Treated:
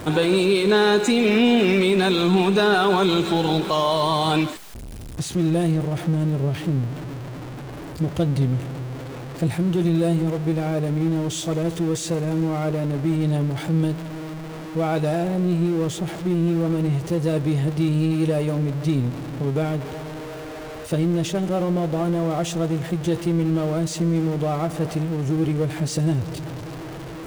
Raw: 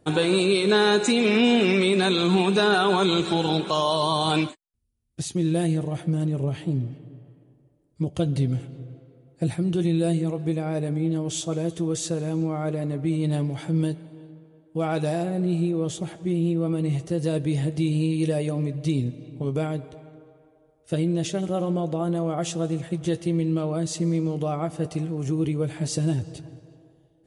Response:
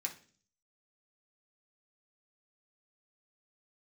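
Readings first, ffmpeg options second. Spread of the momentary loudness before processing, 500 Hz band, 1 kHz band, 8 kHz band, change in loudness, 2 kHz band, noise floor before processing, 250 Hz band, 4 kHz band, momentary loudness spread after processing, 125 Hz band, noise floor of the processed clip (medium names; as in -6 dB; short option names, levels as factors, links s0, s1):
10 LU, +3.0 dB, +3.0 dB, +0.5 dB, +2.5 dB, +2.0 dB, -60 dBFS, +3.0 dB, +0.5 dB, 15 LU, +3.5 dB, -34 dBFS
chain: -af "aeval=exprs='val(0)+0.5*0.0316*sgn(val(0))':c=same,highshelf=f=4500:g=-6,volume=1.19"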